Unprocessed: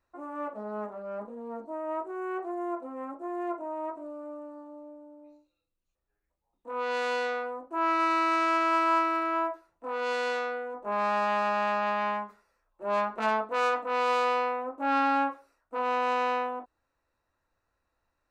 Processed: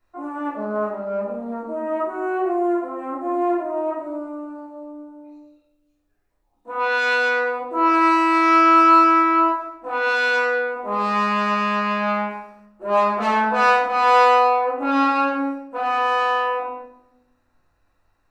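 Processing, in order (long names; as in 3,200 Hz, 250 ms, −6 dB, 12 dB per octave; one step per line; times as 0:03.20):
rectangular room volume 260 cubic metres, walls mixed, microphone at 3.2 metres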